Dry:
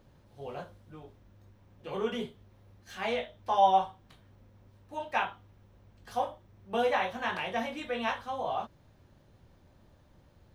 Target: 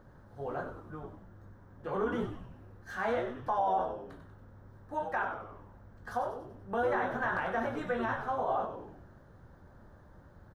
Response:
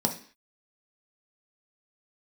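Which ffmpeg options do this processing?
-filter_complex "[0:a]highshelf=f=2k:t=q:w=3:g=-8,asplit=2[a][b];[b]acompressor=threshold=-40dB:ratio=6,volume=-1.5dB[c];[a][c]amix=inputs=2:normalize=0,alimiter=limit=-21dB:level=0:latency=1:release=71,asplit=7[d][e][f][g][h][i][j];[e]adelay=95,afreqshift=-120,volume=-8dB[k];[f]adelay=190,afreqshift=-240,volume=-13.5dB[l];[g]adelay=285,afreqshift=-360,volume=-19dB[m];[h]adelay=380,afreqshift=-480,volume=-24.5dB[n];[i]adelay=475,afreqshift=-600,volume=-30.1dB[o];[j]adelay=570,afreqshift=-720,volume=-35.6dB[p];[d][k][l][m][n][o][p]amix=inputs=7:normalize=0,volume=-1.5dB"

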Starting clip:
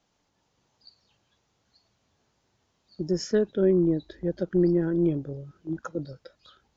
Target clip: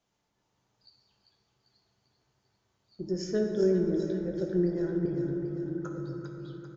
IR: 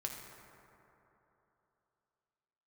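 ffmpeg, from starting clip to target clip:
-filter_complex "[0:a]asettb=1/sr,asplit=3[a][b][c];[a]atrim=end=5.054[d];[b]atrim=start=5.05:end=6.06,asetpts=PTS-STARTPTS,afade=t=in:d=0.004:c=qsin,afade=t=out:st=1.006:d=0.004:c=qsin,acrossover=split=230[e][f];[f]acompressor=threshold=-33dB:ratio=6[g];[e][g]amix=inputs=2:normalize=0[h];[c]atrim=start=6.056[i];[d][h]acrossfade=d=0.004:c1=hsin:c2=qsin[j];[j][i]acrossfade=d=0.004:c1=qsin:c2=hsin,aecho=1:1:395|790|1185|1580|1975|2370|2765:0.376|0.214|0.122|0.0696|0.0397|0.0226|0.0129[k];[1:a]atrim=start_sample=2205[l];[k][l]afir=irnorm=-1:irlink=0,volume=-4.5dB"

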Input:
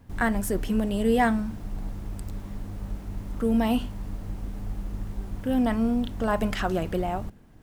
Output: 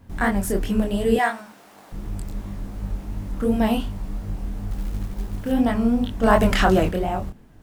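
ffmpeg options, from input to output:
-filter_complex "[0:a]asettb=1/sr,asplit=3[a][b][c];[a]atrim=end=1.164[d];[b]atrim=start=1.16:end=1.92,asetpts=PTS-STARTPTS,afade=t=in:d=0.004:c=qsin,afade=t=out:st=0.756:d=0.004:c=qsin,highpass=610[e];[c]atrim=start=1.916[f];[d][e]acrossfade=d=0.004:c1=hsin:c2=qsin[g];[g][f]acrossfade=d=0.004:c1=qsin:c2=hsin,asettb=1/sr,asplit=3[h][i][j];[h]atrim=end=6.234[k];[i]atrim=start=6.23:end=6.89,asetpts=PTS-STARTPTS,afade=t=in:d=0.004:c=qsin,afade=t=out:st=0.656:d=0.004:c=qsin,acontrast=50[l];[j]atrim=start=6.886[m];[k][l]acrossfade=d=0.004:c1=hsin:c2=qsin[n];[n][m]acrossfade=d=0.004:c1=qsin:c2=hsin,flanger=delay=20:depth=6.3:speed=2.8,asettb=1/sr,asplit=3[o][p][q];[o]atrim=end=4.714[r];[p]atrim=start=4.71:end=5.52,asetpts=PTS-STARTPTS,afade=t=in:d=0.004:c=qsin,afade=t=out:st=0.806:d=0.004:c=qsin,acrusher=bits=6:mode=log:mix=0:aa=0.000001[s];[q]atrim=start=5.516[t];[r][s]acrossfade=d=0.004:c1=hsin:c2=qsin[u];[u][t]acrossfade=d=0.004:c1=qsin:c2=hsin,volume=6.5dB"

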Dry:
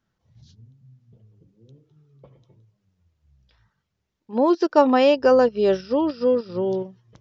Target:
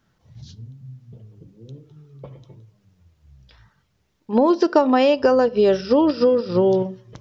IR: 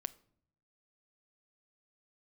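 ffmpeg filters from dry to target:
-filter_complex "[0:a]acompressor=threshold=-23dB:ratio=8,asplit=2[a][b];[1:a]atrim=start_sample=2205[c];[b][c]afir=irnorm=-1:irlink=0,volume=9dB[d];[a][d]amix=inputs=2:normalize=0"

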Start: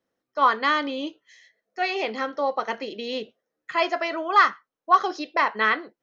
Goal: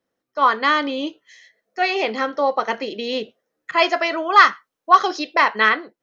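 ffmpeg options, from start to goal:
-filter_complex "[0:a]dynaudnorm=f=140:g=7:m=4dB,asettb=1/sr,asplit=3[a][b][c];[a]atrim=end=3.714[d];[b]atrim=start=3.71:end=5.69,asetpts=PTS-STARTPTS,afade=t=in:d=0.004:c=qsin,afade=t=out:st=1.976:d=0.004:c=qsin,adynamicequalizer=threshold=0.0891:dfrequency=1800:dqfactor=0.7:tfrequency=1800:tqfactor=0.7:attack=5:release=100:ratio=0.375:range=2.5:mode=boostabove:tftype=highshelf[e];[c]atrim=start=5.686[f];[d][e]acrossfade=d=0.004:c1=hsin:c2=qsin[g];[g][f]acrossfade=d=0.004:c1=qsin:c2=hsin,volume=1.5dB"

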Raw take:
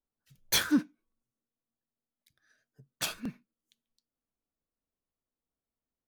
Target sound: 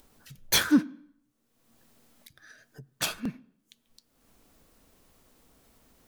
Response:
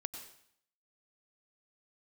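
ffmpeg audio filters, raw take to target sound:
-filter_complex "[0:a]acompressor=mode=upward:threshold=-44dB:ratio=2.5,asplit=2[a][b];[1:a]atrim=start_sample=2205,lowpass=4.6k,highshelf=f=3.2k:g=-11[c];[b][c]afir=irnorm=-1:irlink=0,volume=-13.5dB[d];[a][d]amix=inputs=2:normalize=0,volume=3.5dB"

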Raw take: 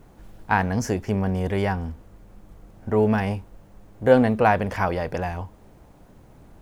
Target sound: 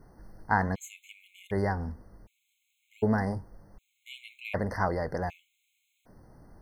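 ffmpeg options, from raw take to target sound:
-af "flanger=delay=0.6:depth=8.5:regen=-89:speed=0.83:shape=triangular,afftfilt=real='re*gt(sin(2*PI*0.66*pts/sr)*(1-2*mod(floor(b*sr/1024/2100),2)),0)':imag='im*gt(sin(2*PI*0.66*pts/sr)*(1-2*mod(floor(b*sr/1024/2100),2)),0)':win_size=1024:overlap=0.75"

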